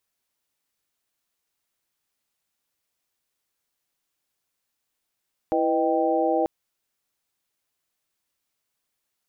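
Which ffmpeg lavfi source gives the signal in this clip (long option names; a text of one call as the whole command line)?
ffmpeg -f lavfi -i "aevalsrc='0.0562*(sin(2*PI*329.63*t)+sin(2*PI*493.88*t)+sin(2*PI*622.25*t)+sin(2*PI*783.99*t))':duration=0.94:sample_rate=44100" out.wav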